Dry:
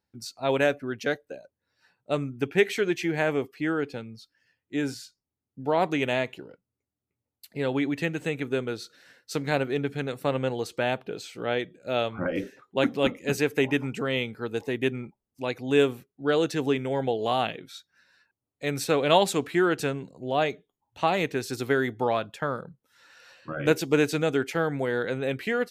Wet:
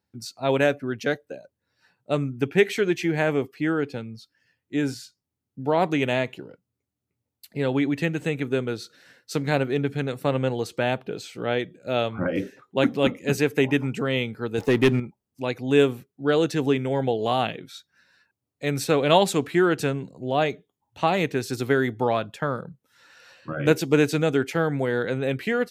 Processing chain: HPF 87 Hz; low shelf 180 Hz +7.5 dB; 14.58–15 sample leveller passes 2; gain +1.5 dB

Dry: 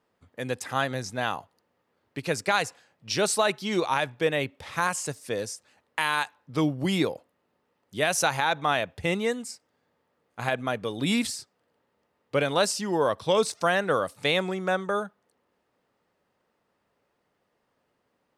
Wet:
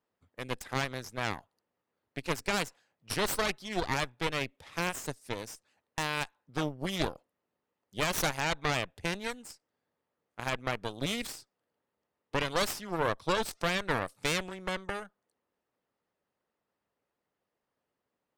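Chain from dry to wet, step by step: harmonic-percussive split harmonic -5 dB; added harmonics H 6 -7 dB, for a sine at -10 dBFS; gain -9 dB

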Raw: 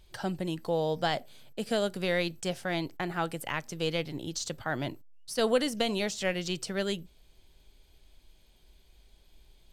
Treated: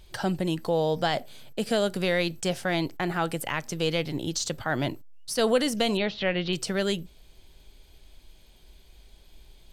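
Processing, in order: 5.97–6.53 steep low-pass 4000 Hz 36 dB/oct; in parallel at +1 dB: limiter -26 dBFS, peak gain reduction 11 dB

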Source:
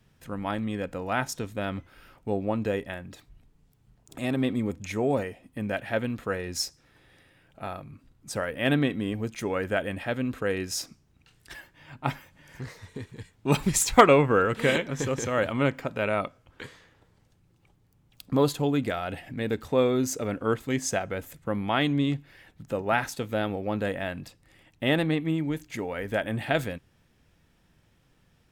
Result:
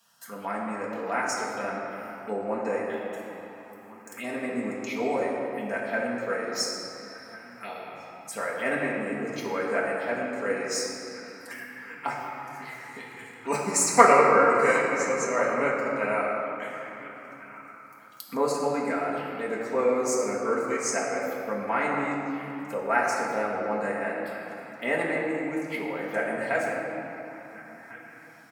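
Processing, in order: outdoor echo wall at 240 m, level -16 dB; envelope phaser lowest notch 360 Hz, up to 3300 Hz, full sweep at -27.5 dBFS; low shelf 330 Hz -11 dB; notch 3600 Hz, Q 14; reverb RT60 3.0 s, pre-delay 4 ms, DRR -6 dB; 12.62–13.34 crackle 70/s -47 dBFS; HPF 260 Hz 12 dB/oct; bell 2100 Hz +7 dB 0.25 oct; mismatched tape noise reduction encoder only; gain -1.5 dB

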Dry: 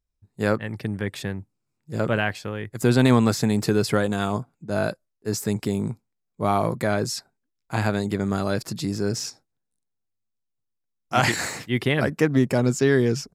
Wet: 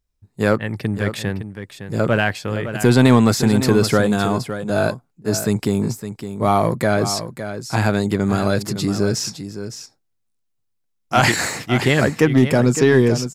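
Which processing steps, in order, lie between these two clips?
in parallel at -6 dB: hard clip -17 dBFS, distortion -10 dB; on the sum: echo 0.561 s -10.5 dB; gain +2.5 dB

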